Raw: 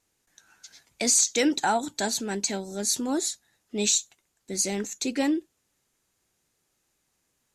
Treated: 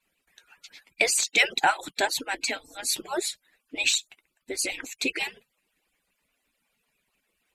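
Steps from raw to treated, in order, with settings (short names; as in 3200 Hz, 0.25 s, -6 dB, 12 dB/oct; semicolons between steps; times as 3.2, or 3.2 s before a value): median-filter separation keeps percussive; fifteen-band EQ 100 Hz -10 dB, 2500 Hz +10 dB, 6300 Hz -11 dB; gain +4 dB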